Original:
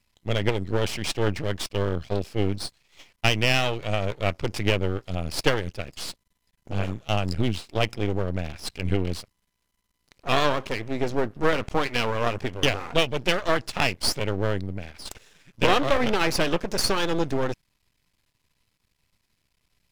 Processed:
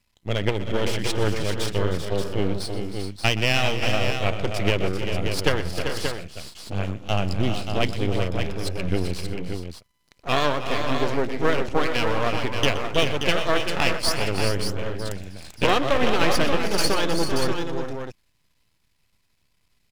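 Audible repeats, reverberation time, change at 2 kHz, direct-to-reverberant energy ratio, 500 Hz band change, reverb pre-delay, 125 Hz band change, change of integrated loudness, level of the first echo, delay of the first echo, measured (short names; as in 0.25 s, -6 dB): 5, none, +1.5 dB, none, +1.5 dB, none, +1.5 dB, +1.0 dB, -15.5 dB, 0.123 s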